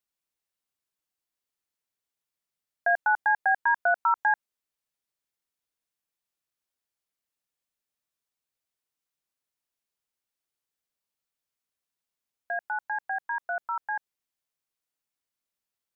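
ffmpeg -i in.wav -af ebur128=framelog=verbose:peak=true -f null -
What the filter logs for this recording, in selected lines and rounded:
Integrated loudness:
  I:         -27.1 LUFS
  Threshold: -37.1 LUFS
Loudness range:
  LRA:        10.9 LU
  Threshold: -50.4 LUFS
  LRA low:   -37.7 LUFS
  LRA high:  -26.9 LUFS
True peak:
  Peak:      -15.2 dBFS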